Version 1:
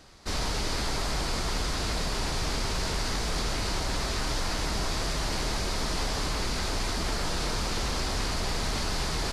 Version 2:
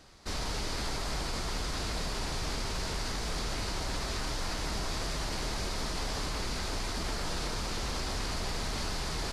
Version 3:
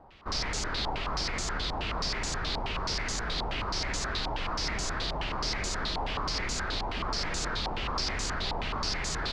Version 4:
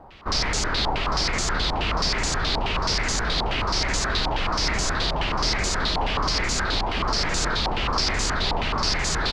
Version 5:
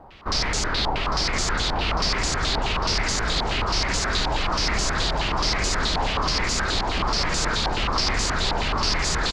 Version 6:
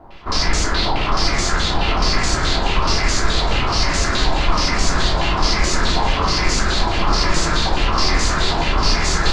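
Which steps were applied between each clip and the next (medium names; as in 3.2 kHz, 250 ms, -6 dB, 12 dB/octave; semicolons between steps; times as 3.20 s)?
peak limiter -23 dBFS, peak gain reduction 3.5 dB; trim -3 dB
step-sequenced low-pass 9.4 Hz 860–7000 Hz
delay 800 ms -14.5 dB; trim +8 dB
feedback delay 1044 ms, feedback 42%, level -10 dB
simulated room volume 480 m³, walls furnished, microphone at 3.1 m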